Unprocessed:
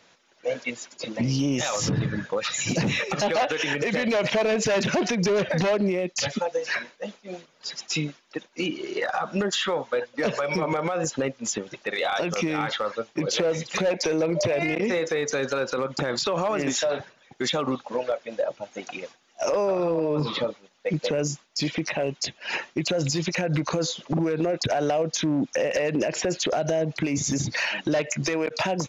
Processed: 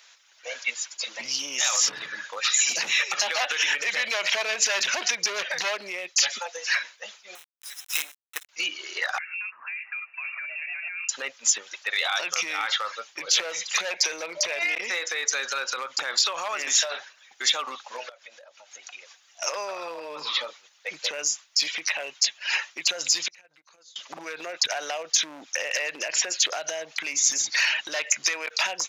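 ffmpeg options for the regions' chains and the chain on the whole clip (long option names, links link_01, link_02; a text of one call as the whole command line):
ffmpeg -i in.wav -filter_complex "[0:a]asettb=1/sr,asplit=3[link_01][link_02][link_03];[link_01]atrim=end=7.354[link_04];[link_02]atrim=start=7.35:end=8.49,asetpts=PTS-STARTPTS,afade=type=in:duration=0.004:curve=qsin,afade=type=out:start_time=1.136:duration=0.004:curve=qsin,bass=frequency=250:gain=-11,treble=frequency=4000:gain=-10,acrusher=bits=5:dc=4:mix=0:aa=0.000001,asuperstop=centerf=4600:order=4:qfactor=5.9[link_05];[link_03]atrim=start=8.486[link_06];[link_04][link_05]acrossfade=duration=0.004:curve1=hsin:curve2=qsin[link_07];[link_07][link_06]acrossfade=duration=0.004:curve1=qsin:curve2=hsin,asettb=1/sr,asplit=3[link_08][link_09][link_10];[link_08]atrim=end=9.184[link_11];[link_09]atrim=start=9.18:end=11.09,asetpts=PTS-STARTPTS,afade=type=in:duration=0.004:curve=qsin,afade=type=out:start_time=1.906:duration=0.004:curve=qsin,acompressor=threshold=-35dB:ratio=8:attack=3.2:release=140:knee=1:detection=peak,lowpass=frequency=2500:width_type=q:width=0.5098,lowpass=frequency=2500:width_type=q:width=0.6013,lowpass=frequency=2500:width_type=q:width=0.9,lowpass=frequency=2500:width_type=q:width=2.563,afreqshift=-2900[link_12];[link_10]atrim=start=11.086[link_13];[link_11][link_12]acrossfade=duration=0.004:curve1=hsin:curve2=qsin[link_14];[link_14][link_13]acrossfade=duration=0.004:curve1=qsin:curve2=hsin,asettb=1/sr,asplit=3[link_15][link_16][link_17];[link_15]atrim=end=18.094[link_18];[link_16]atrim=start=18.09:end=19.42,asetpts=PTS-STARTPTS,afade=type=in:duration=0.004:curve=qsin,afade=type=out:start_time=1.326:duration=0.004:curve=qsin,acompressor=threshold=-42dB:ratio=5:attack=3.2:release=140:knee=1:detection=peak,equalizer=frequency=550:width_type=o:width=0.38:gain=3[link_19];[link_17]atrim=start=19.416[link_20];[link_18][link_19]acrossfade=duration=0.004:curve1=hsin:curve2=qsin[link_21];[link_21][link_20]acrossfade=duration=0.004:curve1=qsin:curve2=hsin,asettb=1/sr,asplit=3[link_22][link_23][link_24];[link_22]atrim=end=23.284[link_25];[link_23]atrim=start=23.28:end=23.96,asetpts=PTS-STARTPTS,afade=type=in:duration=0.004:curve=qsin,afade=type=out:start_time=0.676:duration=0.004:curve=qsin,agate=range=-28dB:threshold=-22dB:ratio=16:release=100:detection=peak,lowshelf=frequency=110:gain=11.5,acompressor=threshold=-43dB:ratio=10:attack=3.2:release=140:knee=1:detection=peak[link_26];[link_24]atrim=start=23.956[link_27];[link_25][link_26]acrossfade=duration=0.004:curve1=hsin:curve2=qsin[link_28];[link_28][link_27]acrossfade=duration=0.004:curve1=qsin:curve2=hsin,highpass=1300,highshelf=frequency=5200:gain=7.5,volume=3.5dB" out.wav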